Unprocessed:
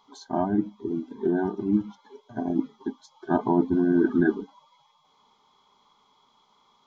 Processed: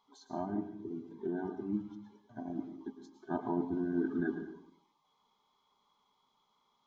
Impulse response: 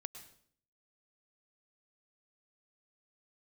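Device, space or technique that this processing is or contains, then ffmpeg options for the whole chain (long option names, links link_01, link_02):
bathroom: -filter_complex "[1:a]atrim=start_sample=2205[link_01];[0:a][link_01]afir=irnorm=-1:irlink=0,asettb=1/sr,asplit=3[link_02][link_03][link_04];[link_02]atrim=end=1.764[link_05];[link_03]atrim=start=1.76:end=2.62,asetpts=PTS-STARTPTS,afade=type=in:duration=0.004:curve=qsin,afade=type=out:start_time=0.856:duration=0.004:curve=qsin,equalizer=frequency=410:width=5.1:gain=-8.5[link_06];[link_04]atrim=start=2.616[link_07];[link_05][link_06]acrossfade=duration=0.004:curve1=hsin:curve2=qsin[link_08];[link_08][link_07]acrossfade=duration=0.004:curve1=qsin:curve2=hsin,volume=-8dB"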